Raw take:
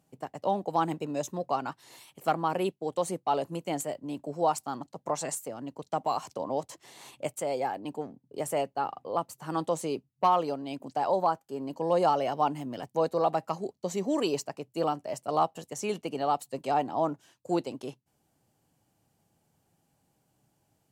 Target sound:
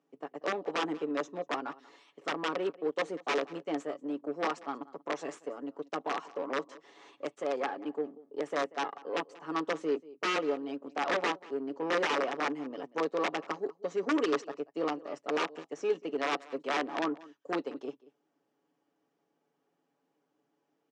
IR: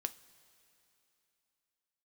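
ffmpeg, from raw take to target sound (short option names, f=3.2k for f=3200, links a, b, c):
-filter_complex "[0:a]aecho=1:1:7.1:0.52,aeval=exprs='(mod(8.41*val(0)+1,2)-1)/8.41':c=same,asplit=2[a][b];[b]adelay=186.6,volume=-20dB,highshelf=f=4k:g=-4.2[c];[a][c]amix=inputs=2:normalize=0,aeval=exprs='0.133*(cos(1*acos(clip(val(0)/0.133,-1,1)))-cos(1*PI/2))+0.00841*(cos(8*acos(clip(val(0)/0.133,-1,1)))-cos(8*PI/2))':c=same,highpass=f=210:w=0.5412,highpass=f=210:w=1.3066,equalizer=f=320:t=q:w=4:g=7,equalizer=f=460:t=q:w=4:g=9,equalizer=f=1.2k:t=q:w=4:g=7,equalizer=f=1.8k:t=q:w=4:g=4,equalizer=f=4.4k:t=q:w=4:g=-6,lowpass=f=5.4k:w=0.5412,lowpass=f=5.4k:w=1.3066,volume=-7.5dB"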